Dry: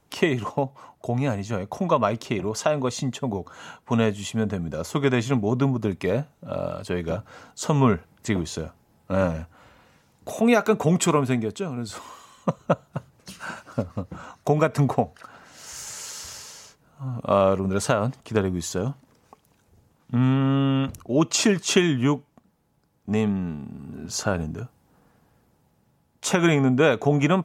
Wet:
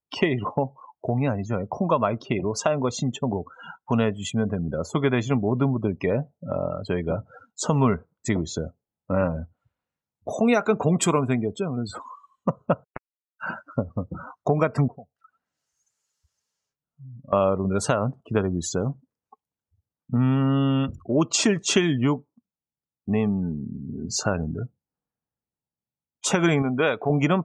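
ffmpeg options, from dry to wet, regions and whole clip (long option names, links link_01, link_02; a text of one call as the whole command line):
ffmpeg -i in.wav -filter_complex "[0:a]asettb=1/sr,asplit=3[link_01][link_02][link_03];[link_01]atrim=end=12.844[link_04];[link_02]atrim=start=12.84:end=13.4,asetpts=PTS-STARTPTS,afade=type=in:duration=0.004:curve=qsin,afade=type=out:start_time=0.556:duration=0.004:curve=qsin,equalizer=frequency=1700:width_type=o:width=1:gain=2,acrusher=bits=2:mix=0:aa=0.5[link_05];[link_03]atrim=start=13.396[link_06];[link_04][link_05]acrossfade=duration=0.004:curve1=hsin:curve2=qsin[link_07];[link_07][link_06]acrossfade=duration=0.004:curve1=qsin:curve2=hsin,asettb=1/sr,asplit=3[link_08][link_09][link_10];[link_08]atrim=end=14.884[link_11];[link_09]atrim=start=14.88:end=17.33,asetpts=PTS-STARTPTS,afade=type=in:duration=0.004:curve=qsin,afade=type=out:start_time=2.446:duration=0.004:curve=qsin,bass=frequency=250:gain=3,treble=frequency=4000:gain=0,acompressor=threshold=-43dB:ratio=2.5:attack=3.2:release=140:knee=1:detection=peak,flanger=delay=4.1:depth=3.4:regen=66:speed=1.9:shape=sinusoidal[link_12];[link_10]atrim=start=17.326[link_13];[link_11][link_12]acrossfade=duration=0.004:curve1=hsin:curve2=qsin[link_14];[link_14][link_13]acrossfade=duration=0.004:curve1=qsin:curve2=hsin,asettb=1/sr,asplit=3[link_15][link_16][link_17];[link_15]atrim=end=26.624[link_18];[link_16]atrim=start=26.62:end=27.1,asetpts=PTS-STARTPTS,afade=type=in:duration=0.004:curve=qsin,afade=type=out:start_time=0.476:duration=0.004:curve=qsin,lowpass=6200,lowshelf=frequency=410:gain=-8.5[link_19];[link_17]atrim=start=27.096[link_20];[link_18][link_19]acrossfade=duration=0.004:curve1=hsin:curve2=qsin[link_21];[link_21][link_20]acrossfade=duration=0.004:curve1=qsin:curve2=hsin,afftdn=noise_reduction=36:noise_floor=-36,acompressor=threshold=-31dB:ratio=1.5,volume=4.5dB" out.wav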